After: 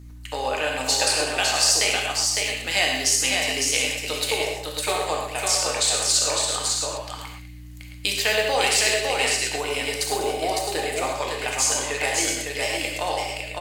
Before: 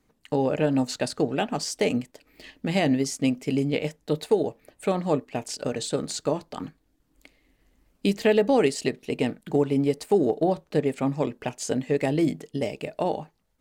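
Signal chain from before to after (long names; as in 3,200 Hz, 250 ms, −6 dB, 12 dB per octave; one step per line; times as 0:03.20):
high-pass filter 930 Hz 12 dB per octave
high-shelf EQ 2,700 Hz +10 dB
in parallel at −2.5 dB: downward compressor, threshold −28 dBFS, peak gain reduction 8 dB
on the sum: mains hum 60 Hz, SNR 14 dB
multi-tap delay 65/142/198/556/666 ms −9/−20/−14/−3.5/−10 dB
on a send at −1 dB: convolution reverb, pre-delay 3 ms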